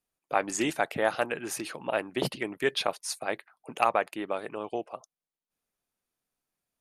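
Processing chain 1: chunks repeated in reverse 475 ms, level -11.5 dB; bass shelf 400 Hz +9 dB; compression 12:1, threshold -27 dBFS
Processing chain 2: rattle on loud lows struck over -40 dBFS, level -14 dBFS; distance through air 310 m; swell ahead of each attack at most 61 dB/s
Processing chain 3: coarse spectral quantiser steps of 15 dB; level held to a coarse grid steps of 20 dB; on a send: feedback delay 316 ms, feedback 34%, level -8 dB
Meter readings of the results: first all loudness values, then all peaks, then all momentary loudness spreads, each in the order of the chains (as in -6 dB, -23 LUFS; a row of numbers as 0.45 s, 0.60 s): -34.0 LUFS, -29.0 LUFS, -41.5 LUFS; -13.5 dBFS, -10.0 dBFS, -22.5 dBFS; 11 LU, 7 LU, 7 LU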